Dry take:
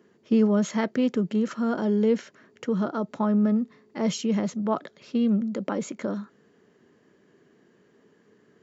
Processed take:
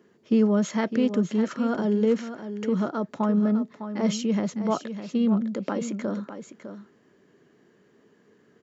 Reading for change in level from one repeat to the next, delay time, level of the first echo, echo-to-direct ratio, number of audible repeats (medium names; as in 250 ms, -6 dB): no regular repeats, 605 ms, -10.5 dB, -10.5 dB, 1